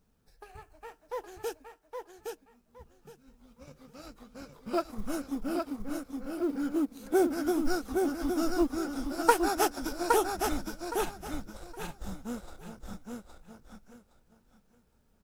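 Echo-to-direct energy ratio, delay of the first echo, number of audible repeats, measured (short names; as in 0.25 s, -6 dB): -4.0 dB, 0.816 s, 3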